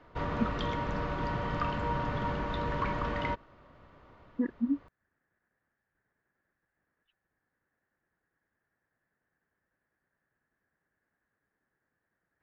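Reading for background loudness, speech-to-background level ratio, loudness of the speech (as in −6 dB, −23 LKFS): −33.5 LKFS, −1.5 dB, −35.0 LKFS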